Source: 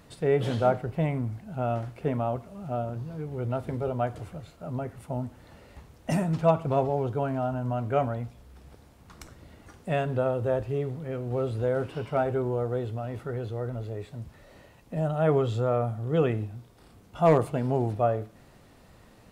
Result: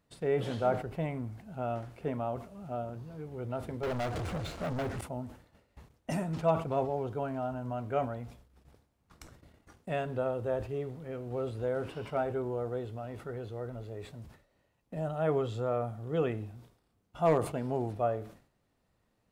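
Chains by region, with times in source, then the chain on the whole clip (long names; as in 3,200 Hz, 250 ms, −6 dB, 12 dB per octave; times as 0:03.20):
0:03.83–0:05.01: low-pass filter 7,100 Hz + downward compressor 2 to 1, threshold −35 dBFS + leveller curve on the samples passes 5
whole clip: noise gate −48 dBFS, range −15 dB; dynamic equaliser 130 Hz, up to −4 dB, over −42 dBFS, Q 1.6; level that may fall only so fast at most 120 dB per second; level −5.5 dB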